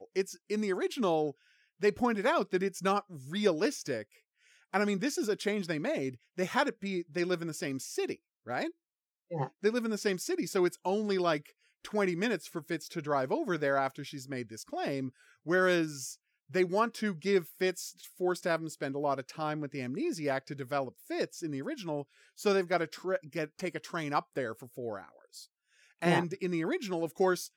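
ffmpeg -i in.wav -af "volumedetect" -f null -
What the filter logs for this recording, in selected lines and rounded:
mean_volume: -33.0 dB
max_volume: -14.0 dB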